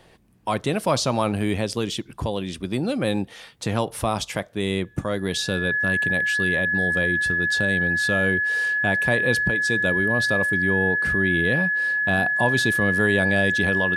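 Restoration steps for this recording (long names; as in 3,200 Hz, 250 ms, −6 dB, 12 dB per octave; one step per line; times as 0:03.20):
notch filter 1,700 Hz, Q 30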